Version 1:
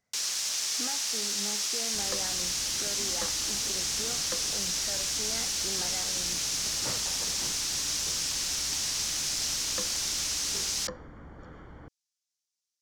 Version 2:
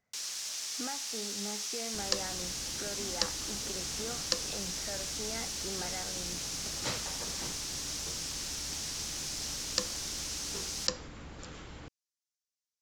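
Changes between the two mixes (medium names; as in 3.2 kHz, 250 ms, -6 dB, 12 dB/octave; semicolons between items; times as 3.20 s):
first sound -7.5 dB; second sound: remove Savitzky-Golay filter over 41 samples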